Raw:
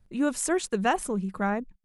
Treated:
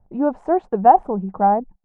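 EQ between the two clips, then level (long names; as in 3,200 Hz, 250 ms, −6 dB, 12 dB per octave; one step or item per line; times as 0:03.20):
low-pass with resonance 790 Hz, resonance Q 4.9
+3.5 dB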